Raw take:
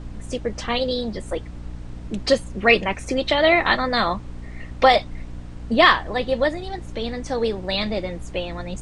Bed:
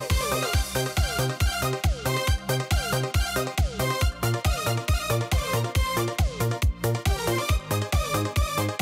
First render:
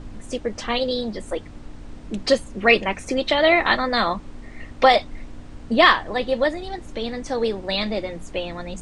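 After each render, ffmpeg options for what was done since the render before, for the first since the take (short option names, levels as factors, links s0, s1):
-af "bandreject=f=60:t=h:w=6,bandreject=f=120:t=h:w=6,bandreject=f=180:t=h:w=6"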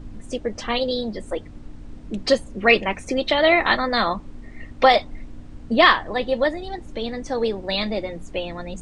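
-af "afftdn=nr=6:nf=-40"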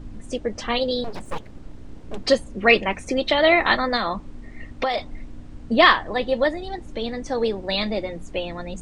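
-filter_complex "[0:a]asettb=1/sr,asplit=3[s0][s1][s2];[s0]atrim=end=1.044[s3];[s1]atrim=start=1.04:end=2.26,asetpts=PTS-STARTPTS,afade=t=in:d=0.004:c=qsin,afade=t=out:st=1.216:d=0.004:c=qsin,aeval=exprs='abs(val(0))':c=same[s4];[s2]atrim=start=2.256[s5];[s3][s4]acrossfade=d=0.004:c1=hsin:c2=qsin[s6];[s6][s5]acrossfade=d=0.004:c1=qsin:c2=hsin,asettb=1/sr,asplit=3[s7][s8][s9];[s7]atrim=end=3.964[s10];[s8]atrim=start=3.96:end=4.98,asetpts=PTS-STARTPTS,afade=t=in:d=0.004:c=qsin,afade=t=out:st=1.016:d=0.004:c=qsin,acompressor=threshold=0.112:ratio=6:attack=3.2:release=140:knee=1:detection=peak[s11];[s9]atrim=start=4.976[s12];[s10][s11]acrossfade=d=0.004:c1=hsin:c2=qsin[s13];[s13][s12]acrossfade=d=0.004:c1=qsin:c2=hsin"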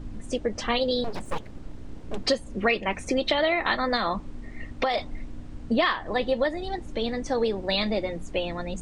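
-af "acompressor=threshold=0.1:ratio=6"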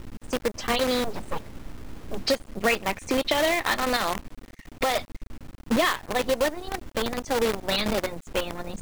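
-filter_complex "[0:a]acrossover=split=2000[s0][s1];[s0]acrusher=bits=5:dc=4:mix=0:aa=0.000001[s2];[s1]aeval=exprs='sgn(val(0))*max(abs(val(0))-0.00178,0)':c=same[s3];[s2][s3]amix=inputs=2:normalize=0"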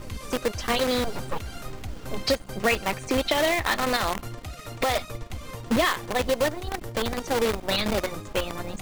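-filter_complex "[1:a]volume=0.2[s0];[0:a][s0]amix=inputs=2:normalize=0"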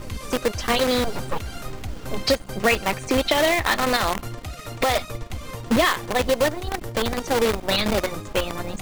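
-af "volume=1.5"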